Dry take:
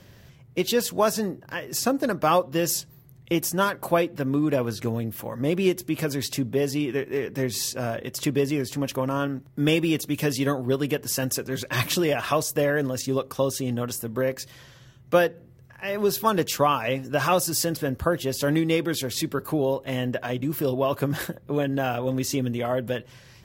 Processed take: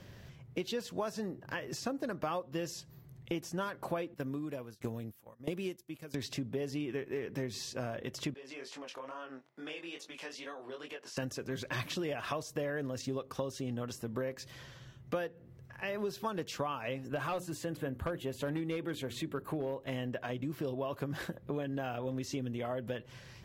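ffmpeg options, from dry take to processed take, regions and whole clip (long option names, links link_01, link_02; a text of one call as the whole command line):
ffmpeg -i in.wav -filter_complex "[0:a]asettb=1/sr,asplit=3[link_01][link_02][link_03];[link_01]atrim=end=4.144[link_04];[link_02]atrim=start=4.14:end=6.15,asetpts=PTS-STARTPTS,afade=type=in:duration=0.004:curve=qsin,afade=type=out:start_time=2.006:duration=0.004:curve=qsin,agate=range=-13dB:threshold=-33dB:ratio=16:release=100:detection=peak,highshelf=frequency=5900:gain=11.5,aeval=exprs='val(0)*pow(10,-23*if(lt(mod(1.5*n/s,1),2*abs(1.5)/1000),1-mod(1.5*n/s,1)/(2*abs(1.5)/1000),(mod(1.5*n/s,1)-2*abs(1.5)/1000)/(1-2*abs(1.5)/1000))/20)':channel_layout=same[link_05];[link_03]atrim=start=6.146[link_06];[link_04][link_05]acrossfade=duration=0.004:curve1=hsin:curve2=qsin[link_07];[link_07][link_06]acrossfade=duration=0.004:curve1=qsin:curve2=hsin,asettb=1/sr,asplit=3[link_08][link_09][link_10];[link_08]atrim=end=8.344[link_11];[link_09]atrim=start=8.34:end=11.17,asetpts=PTS-STARTPTS,afade=type=in:duration=0.004:curve=qsin,afade=type=out:start_time=2.826:duration=0.004:curve=qsin,highpass=600,lowpass=6800,acompressor=threshold=-37dB:ratio=3:attack=3.2:release=140:knee=1:detection=peak,flanger=delay=18:depth=6.2:speed=2.3[link_12];[link_10]atrim=start=11.166[link_13];[link_11][link_12]acrossfade=duration=0.004:curve1=hsin:curve2=qsin[link_14];[link_14][link_13]acrossfade=duration=0.004:curve1=qsin:curve2=hsin,asettb=1/sr,asplit=3[link_15][link_16][link_17];[link_15]atrim=end=17.084[link_18];[link_16]atrim=start=17.08:end=19.8,asetpts=PTS-STARTPTS,afade=type=in:duration=0.004:curve=qsin,afade=type=out:start_time=2.716:duration=0.004:curve=qsin,equalizer=frequency=5200:width=2.6:gain=-12.5,bandreject=frequency=60:width_type=h:width=6,bandreject=frequency=120:width_type=h:width=6,bandreject=frequency=180:width_type=h:width=6,bandreject=frequency=240:width_type=h:width=6,bandreject=frequency=300:width_type=h:width=6,bandreject=frequency=360:width_type=h:width=6,asoftclip=type=hard:threshold=-16dB[link_19];[link_17]atrim=start=19.796[link_20];[link_18][link_19]acrossfade=duration=0.004:curve1=hsin:curve2=qsin[link_21];[link_21][link_20]acrossfade=duration=0.004:curve1=qsin:curve2=hsin,acompressor=threshold=-33dB:ratio=4,highshelf=frequency=7600:gain=-8,acrossover=split=7100[link_22][link_23];[link_23]acompressor=threshold=-53dB:ratio=4:attack=1:release=60[link_24];[link_22][link_24]amix=inputs=2:normalize=0,volume=-2dB" out.wav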